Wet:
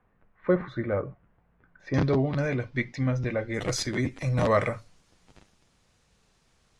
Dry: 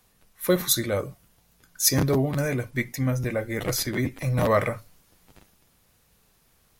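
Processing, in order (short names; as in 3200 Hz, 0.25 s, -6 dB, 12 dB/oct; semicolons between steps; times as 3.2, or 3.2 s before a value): LPF 1900 Hz 24 dB/oct, from 1.94 s 4800 Hz, from 3.54 s 8000 Hz; gain -1.5 dB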